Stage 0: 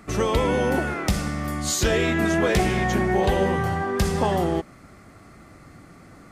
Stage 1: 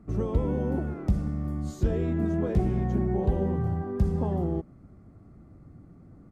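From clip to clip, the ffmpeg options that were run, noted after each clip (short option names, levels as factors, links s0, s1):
-af "firequalizer=gain_entry='entry(100,0);entry(560,-11);entry(1900,-24);entry(3100,-26)':delay=0.05:min_phase=1"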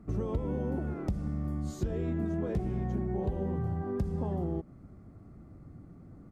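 -af "acompressor=threshold=0.0355:ratio=4"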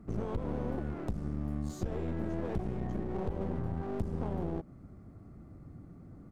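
-af "aeval=exprs='clip(val(0),-1,0.00794)':c=same"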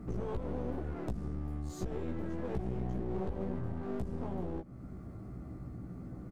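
-filter_complex "[0:a]acompressor=threshold=0.00398:ratio=2,asplit=2[s0][s1];[s1]adelay=16,volume=0.631[s2];[s0][s2]amix=inputs=2:normalize=0,volume=2"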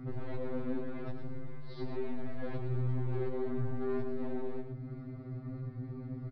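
-af "aresample=11025,asoftclip=type=tanh:threshold=0.02,aresample=44100,aecho=1:1:114:0.398,afftfilt=real='re*2.45*eq(mod(b,6),0)':imag='im*2.45*eq(mod(b,6),0)':win_size=2048:overlap=0.75,volume=1.78"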